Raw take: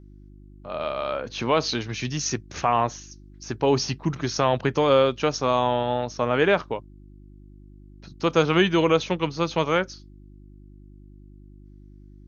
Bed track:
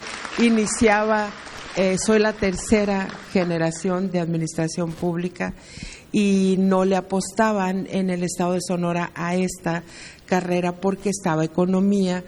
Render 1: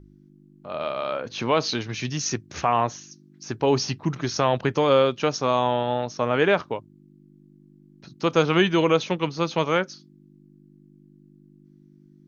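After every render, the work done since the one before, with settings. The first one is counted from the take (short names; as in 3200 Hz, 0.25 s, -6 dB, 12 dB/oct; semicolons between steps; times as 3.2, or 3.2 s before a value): de-hum 50 Hz, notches 2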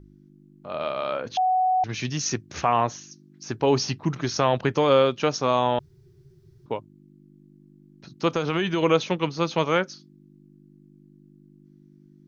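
1.37–1.84 bleep 744 Hz -18 dBFS; 5.79–6.66 room tone; 8.35–8.83 compressor, threshold -20 dBFS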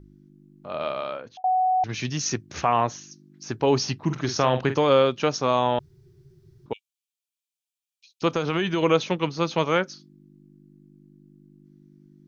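0.91–1.44 fade out; 4.02–4.8 doubler 47 ms -10 dB; 6.73–8.22 rippled Chebyshev high-pass 2300 Hz, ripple 3 dB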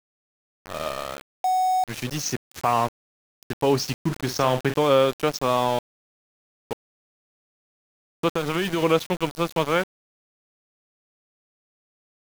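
sample gate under -29 dBFS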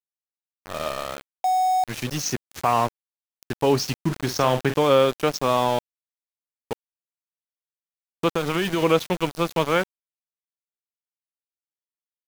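gain +1 dB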